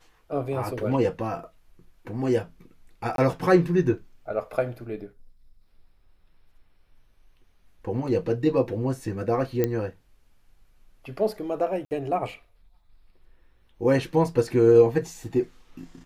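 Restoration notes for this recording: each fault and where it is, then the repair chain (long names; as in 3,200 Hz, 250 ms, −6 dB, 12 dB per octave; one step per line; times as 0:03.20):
0:03.16–0:03.18: drop-out 22 ms
0:09.64: click −11 dBFS
0:11.85–0:11.91: drop-out 59 ms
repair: click removal
repair the gap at 0:03.16, 22 ms
repair the gap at 0:11.85, 59 ms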